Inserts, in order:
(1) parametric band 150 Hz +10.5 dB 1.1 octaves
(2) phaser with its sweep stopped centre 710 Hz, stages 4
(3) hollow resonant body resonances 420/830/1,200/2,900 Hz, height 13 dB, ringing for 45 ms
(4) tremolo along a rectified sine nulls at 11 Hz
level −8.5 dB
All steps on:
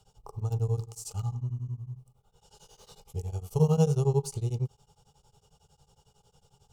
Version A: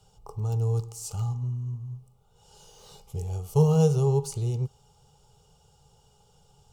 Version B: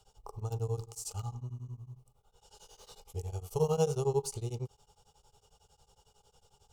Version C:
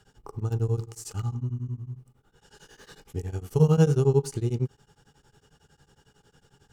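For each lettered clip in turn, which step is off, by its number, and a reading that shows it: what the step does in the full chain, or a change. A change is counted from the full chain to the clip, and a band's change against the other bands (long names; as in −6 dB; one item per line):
4, change in integrated loudness +3.0 LU
1, 250 Hz band −9.0 dB
2, 8 kHz band −2.5 dB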